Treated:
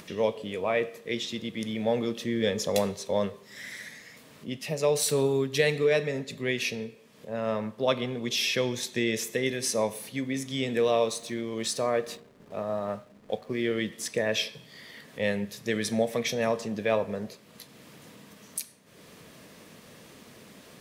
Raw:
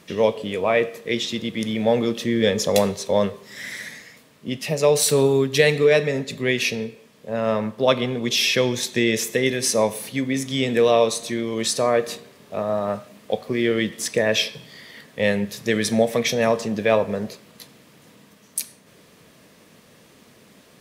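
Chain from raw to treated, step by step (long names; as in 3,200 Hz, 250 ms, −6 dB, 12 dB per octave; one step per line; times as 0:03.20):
0:10.85–0:13.50: slack as between gear wheels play −42.5 dBFS
upward compression, threshold −33 dBFS
level −7.5 dB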